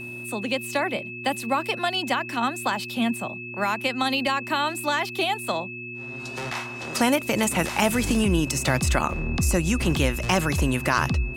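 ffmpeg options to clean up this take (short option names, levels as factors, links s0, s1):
-af "bandreject=f=120.2:t=h:w=4,bandreject=f=240.4:t=h:w=4,bandreject=f=360.6:t=h:w=4,bandreject=f=2600:w=30"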